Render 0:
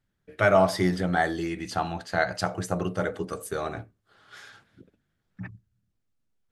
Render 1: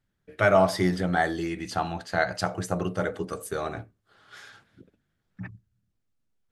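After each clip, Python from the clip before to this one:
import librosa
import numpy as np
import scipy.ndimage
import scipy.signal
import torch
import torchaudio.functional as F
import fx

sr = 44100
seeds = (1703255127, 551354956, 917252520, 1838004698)

y = x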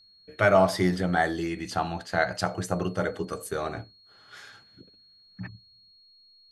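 y = x + 10.0 ** (-55.0 / 20.0) * np.sin(2.0 * np.pi * 4300.0 * np.arange(len(x)) / sr)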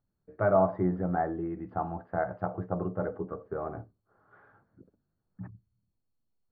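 y = scipy.signal.sosfilt(scipy.signal.butter(4, 1200.0, 'lowpass', fs=sr, output='sos'), x)
y = F.gain(torch.from_numpy(y), -3.5).numpy()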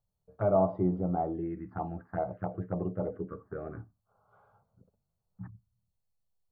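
y = fx.env_phaser(x, sr, low_hz=290.0, high_hz=1700.0, full_db=-27.0)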